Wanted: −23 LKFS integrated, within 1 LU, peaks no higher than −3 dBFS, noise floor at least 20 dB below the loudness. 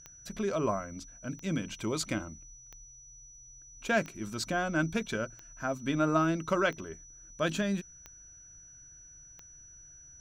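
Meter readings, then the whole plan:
number of clicks 8; interfering tone 5,900 Hz; level of the tone −51 dBFS; integrated loudness −32.5 LKFS; sample peak −15.0 dBFS; target loudness −23.0 LKFS
→ click removal
notch filter 5,900 Hz, Q 30
level +9.5 dB

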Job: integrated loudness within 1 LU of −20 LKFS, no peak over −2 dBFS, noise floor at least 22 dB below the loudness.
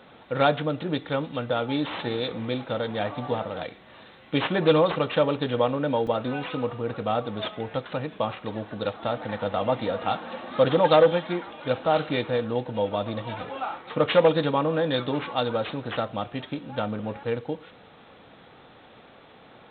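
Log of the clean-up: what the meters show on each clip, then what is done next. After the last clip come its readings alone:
number of dropouts 1; longest dropout 2.9 ms; integrated loudness −26.5 LKFS; sample peak −7.0 dBFS; target loudness −20.0 LKFS
→ repair the gap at 0:06.07, 2.9 ms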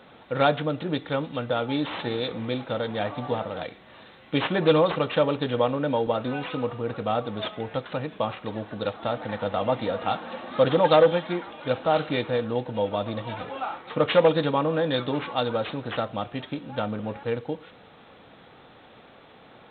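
number of dropouts 0; integrated loudness −26.5 LKFS; sample peak −7.0 dBFS; target loudness −20.0 LKFS
→ level +6.5 dB
brickwall limiter −2 dBFS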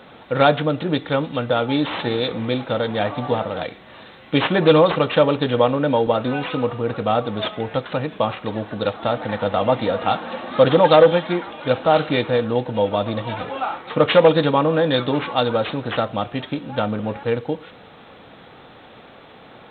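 integrated loudness −20.0 LKFS; sample peak −2.0 dBFS; background noise floor −45 dBFS

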